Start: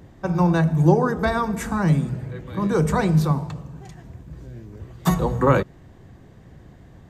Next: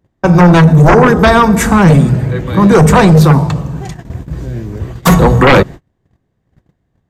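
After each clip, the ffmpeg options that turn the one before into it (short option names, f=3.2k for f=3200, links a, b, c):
-af "aeval=exprs='0.631*sin(PI/2*3.55*val(0)/0.631)':c=same,agate=range=-35dB:threshold=-25dB:ratio=16:detection=peak,volume=2.5dB"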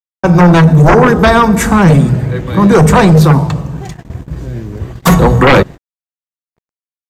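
-af "aeval=exprs='sgn(val(0))*max(abs(val(0))-0.01,0)':c=same"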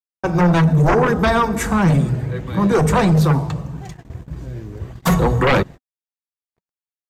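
-af "flanger=delay=0.8:depth=2.1:regen=-68:speed=1.6:shape=triangular,volume=-4.5dB"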